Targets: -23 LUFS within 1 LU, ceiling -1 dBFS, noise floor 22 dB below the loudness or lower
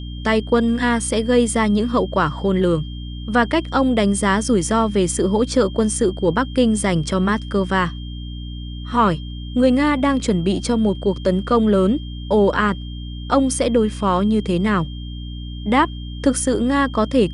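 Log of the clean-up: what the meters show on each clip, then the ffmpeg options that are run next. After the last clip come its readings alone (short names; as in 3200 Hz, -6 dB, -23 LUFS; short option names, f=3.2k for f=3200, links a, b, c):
hum 60 Hz; harmonics up to 300 Hz; hum level -28 dBFS; steady tone 3200 Hz; tone level -40 dBFS; loudness -19.0 LUFS; peak -4.5 dBFS; loudness target -23.0 LUFS
-> -af "bandreject=f=60:t=h:w=6,bandreject=f=120:t=h:w=6,bandreject=f=180:t=h:w=6,bandreject=f=240:t=h:w=6,bandreject=f=300:t=h:w=6"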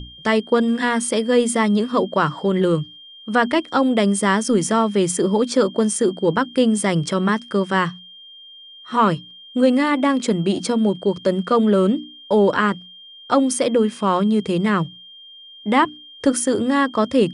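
hum none; steady tone 3200 Hz; tone level -40 dBFS
-> -af "bandreject=f=3.2k:w=30"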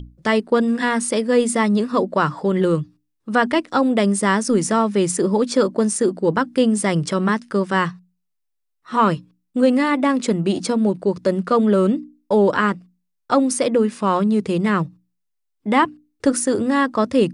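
steady tone none; loudness -19.0 LUFS; peak -4.0 dBFS; loudness target -23.0 LUFS
-> -af "volume=-4dB"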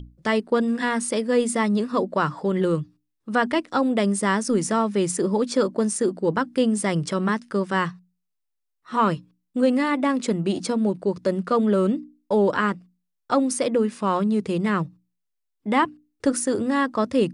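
loudness -23.0 LUFS; peak -8.0 dBFS; noise floor -78 dBFS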